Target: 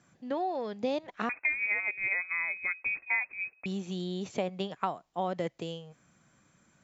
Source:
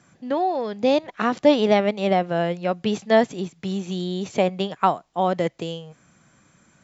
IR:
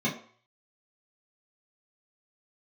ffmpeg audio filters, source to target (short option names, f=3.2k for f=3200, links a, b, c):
-filter_complex "[0:a]acompressor=threshold=-19dB:ratio=4,asettb=1/sr,asplit=3[a][b][c];[a]atrim=end=1.294[d];[b]atrim=start=1.29:end=3.66,asetpts=PTS-STARTPTS,afade=t=in:d=0.004:c=qsin,afade=t=out:st=2.366:d=0.004:c=qsin,lowpass=f=2.3k:t=q:w=0.5098,lowpass=f=2.3k:t=q:w=0.6013,lowpass=f=2.3k:t=q:w=0.9,lowpass=f=2.3k:t=q:w=2.563,afreqshift=-2700[e];[c]atrim=start=3.656[f];[d][e]acrossfade=d=0.004:c1=hsin:c2=qsin[g];[g][f]acrossfade=d=0.004:c1=qsin:c2=hsin,volume=-8dB"